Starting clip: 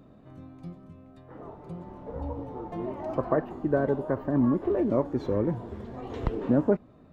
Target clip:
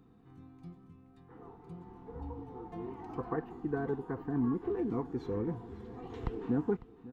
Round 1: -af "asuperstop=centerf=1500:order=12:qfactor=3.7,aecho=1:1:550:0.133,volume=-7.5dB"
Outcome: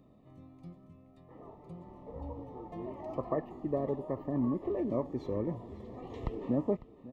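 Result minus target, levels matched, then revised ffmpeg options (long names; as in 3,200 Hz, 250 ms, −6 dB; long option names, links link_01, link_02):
2,000 Hz band −8.0 dB
-af "asuperstop=centerf=590:order=12:qfactor=3.7,aecho=1:1:550:0.133,volume=-7.5dB"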